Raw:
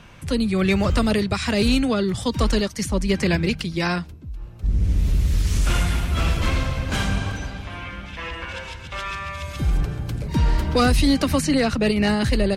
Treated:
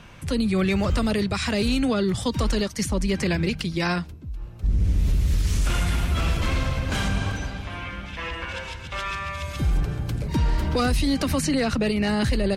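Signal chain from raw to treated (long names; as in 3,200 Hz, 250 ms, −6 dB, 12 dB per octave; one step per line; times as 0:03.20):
brickwall limiter −15 dBFS, peak gain reduction 6 dB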